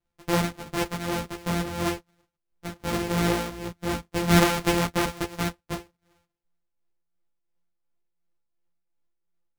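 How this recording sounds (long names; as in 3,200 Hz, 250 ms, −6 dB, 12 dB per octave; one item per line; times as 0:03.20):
a buzz of ramps at a fixed pitch in blocks of 256 samples
tremolo triangle 2.8 Hz, depth 60%
a shimmering, thickened sound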